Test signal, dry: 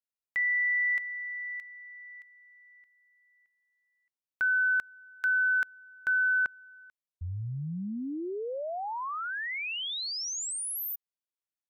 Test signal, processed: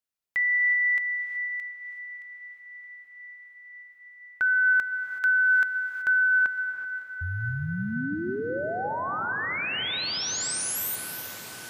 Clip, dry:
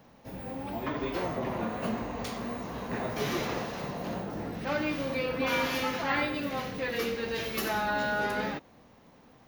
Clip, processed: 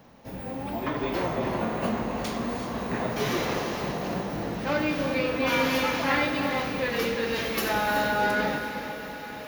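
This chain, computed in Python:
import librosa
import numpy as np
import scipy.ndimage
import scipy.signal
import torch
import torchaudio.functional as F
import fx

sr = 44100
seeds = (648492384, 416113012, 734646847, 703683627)

p1 = x + fx.echo_diffused(x, sr, ms=545, feedback_pct=80, wet_db=-14.5, dry=0)
p2 = fx.rev_gated(p1, sr, seeds[0], gate_ms=400, shape='rising', drr_db=6.5)
y = p2 * librosa.db_to_amplitude(3.5)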